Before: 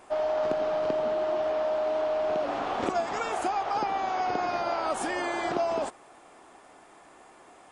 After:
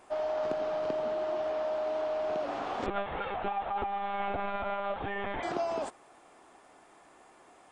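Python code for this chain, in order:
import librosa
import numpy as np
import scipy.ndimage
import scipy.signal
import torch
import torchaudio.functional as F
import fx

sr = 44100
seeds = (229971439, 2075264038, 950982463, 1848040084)

y = fx.lpc_monotone(x, sr, seeds[0], pitch_hz=200.0, order=16, at=(2.86, 5.43))
y = y * librosa.db_to_amplitude(-4.5)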